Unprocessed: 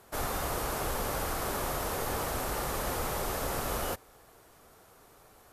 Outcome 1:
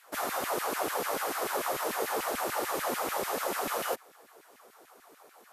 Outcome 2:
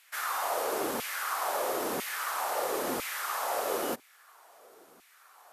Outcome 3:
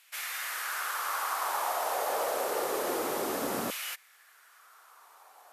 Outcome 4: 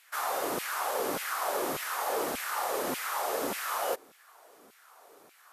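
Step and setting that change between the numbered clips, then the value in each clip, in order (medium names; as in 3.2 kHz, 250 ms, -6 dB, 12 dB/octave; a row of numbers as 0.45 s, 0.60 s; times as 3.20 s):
LFO high-pass, rate: 6.8 Hz, 1 Hz, 0.27 Hz, 1.7 Hz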